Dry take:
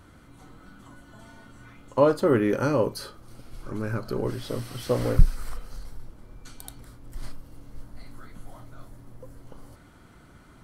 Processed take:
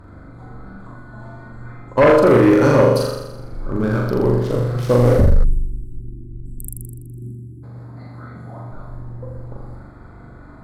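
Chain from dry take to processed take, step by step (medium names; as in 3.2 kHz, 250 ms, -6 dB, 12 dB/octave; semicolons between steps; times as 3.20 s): local Wiener filter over 15 samples; 6.99–8.71 s: high-pass 85 Hz 24 dB/octave; on a send: flutter echo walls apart 7.1 m, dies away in 0.95 s; 5.44–7.63 s: on the sum: spectral selection erased 400–7500 Hz; sine folder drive 9 dB, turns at -2.5 dBFS; trim -4 dB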